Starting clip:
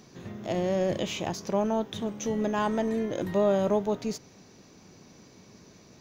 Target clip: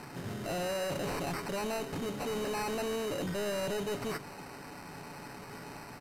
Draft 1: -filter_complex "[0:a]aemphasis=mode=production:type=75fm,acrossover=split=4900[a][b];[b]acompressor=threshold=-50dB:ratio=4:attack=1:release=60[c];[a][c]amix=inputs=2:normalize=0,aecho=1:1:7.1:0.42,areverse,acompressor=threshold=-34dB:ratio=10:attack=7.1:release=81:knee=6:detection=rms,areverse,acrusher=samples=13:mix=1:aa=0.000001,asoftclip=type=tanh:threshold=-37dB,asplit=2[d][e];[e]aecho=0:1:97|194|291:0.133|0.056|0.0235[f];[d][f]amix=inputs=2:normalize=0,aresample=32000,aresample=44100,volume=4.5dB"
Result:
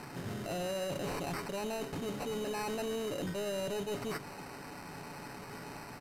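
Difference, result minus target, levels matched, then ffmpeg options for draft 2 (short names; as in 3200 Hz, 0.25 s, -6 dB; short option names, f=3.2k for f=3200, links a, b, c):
compressor: peak gain reduction +9 dB
-filter_complex "[0:a]aemphasis=mode=production:type=75fm,acrossover=split=4900[a][b];[b]acompressor=threshold=-50dB:ratio=4:attack=1:release=60[c];[a][c]amix=inputs=2:normalize=0,aecho=1:1:7.1:0.42,areverse,acompressor=threshold=-24dB:ratio=10:attack=7.1:release=81:knee=6:detection=rms,areverse,acrusher=samples=13:mix=1:aa=0.000001,asoftclip=type=tanh:threshold=-37dB,asplit=2[d][e];[e]aecho=0:1:97|194|291:0.133|0.056|0.0235[f];[d][f]amix=inputs=2:normalize=0,aresample=32000,aresample=44100,volume=4.5dB"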